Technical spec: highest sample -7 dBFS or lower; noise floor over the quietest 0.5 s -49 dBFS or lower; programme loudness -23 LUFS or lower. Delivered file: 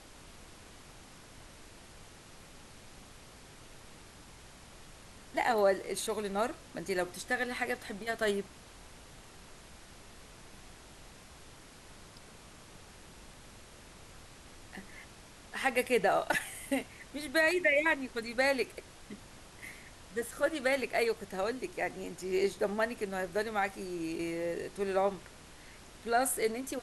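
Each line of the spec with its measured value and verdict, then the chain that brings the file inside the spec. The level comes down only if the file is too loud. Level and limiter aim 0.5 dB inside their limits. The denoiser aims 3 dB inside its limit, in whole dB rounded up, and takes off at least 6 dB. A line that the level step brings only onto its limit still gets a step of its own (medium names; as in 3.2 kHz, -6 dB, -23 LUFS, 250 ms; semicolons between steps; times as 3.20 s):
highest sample -15.0 dBFS: pass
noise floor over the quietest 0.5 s -53 dBFS: pass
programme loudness -32.5 LUFS: pass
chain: none needed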